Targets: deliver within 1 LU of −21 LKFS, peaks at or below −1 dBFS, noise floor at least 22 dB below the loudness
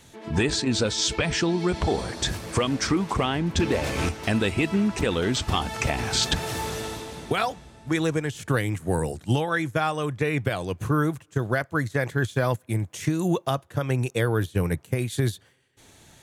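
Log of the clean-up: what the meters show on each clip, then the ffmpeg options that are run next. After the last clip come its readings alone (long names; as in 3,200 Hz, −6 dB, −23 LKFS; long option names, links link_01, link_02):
integrated loudness −26.0 LKFS; sample peak −11.0 dBFS; target loudness −21.0 LKFS
→ -af "volume=5dB"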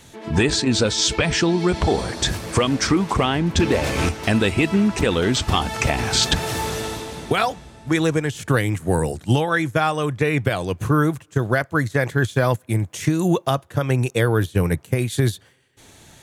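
integrated loudness −21.0 LKFS; sample peak −6.0 dBFS; background noise floor −53 dBFS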